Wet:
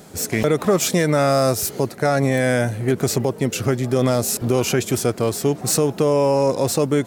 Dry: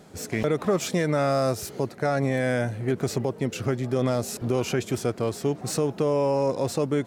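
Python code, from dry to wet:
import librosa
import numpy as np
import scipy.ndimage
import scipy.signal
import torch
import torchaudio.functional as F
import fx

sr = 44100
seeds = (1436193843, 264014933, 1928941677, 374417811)

y = fx.high_shelf(x, sr, hz=7400.0, db=11.5)
y = y * librosa.db_to_amplitude(6.0)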